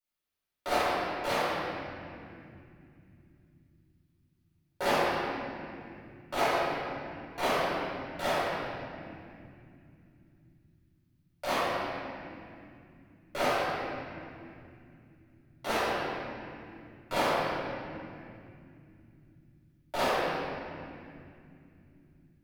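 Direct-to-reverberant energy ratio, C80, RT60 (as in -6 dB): -14.0 dB, -2.5 dB, no single decay rate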